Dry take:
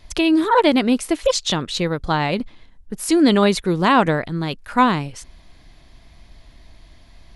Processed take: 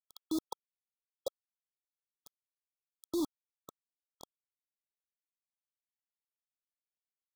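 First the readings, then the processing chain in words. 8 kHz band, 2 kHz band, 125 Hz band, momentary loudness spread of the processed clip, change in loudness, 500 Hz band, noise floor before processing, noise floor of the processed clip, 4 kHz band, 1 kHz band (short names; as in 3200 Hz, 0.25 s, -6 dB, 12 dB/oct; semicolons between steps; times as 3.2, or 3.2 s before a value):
-23.5 dB, under -40 dB, under -40 dB, 22 LU, -21.5 dB, -26.5 dB, -48 dBFS, under -85 dBFS, -29.0 dB, -35.0 dB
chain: bin magnitudes rounded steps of 30 dB; Chebyshev high-pass 340 Hz, order 3; compressor 2:1, threshold -43 dBFS, peak gain reduction 17.5 dB; limiter -25.5 dBFS, peak gain reduction 8 dB; level quantiser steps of 16 dB; bit-crush 6-bit; brick-wall FIR band-stop 1300–3300 Hz; gain +1 dB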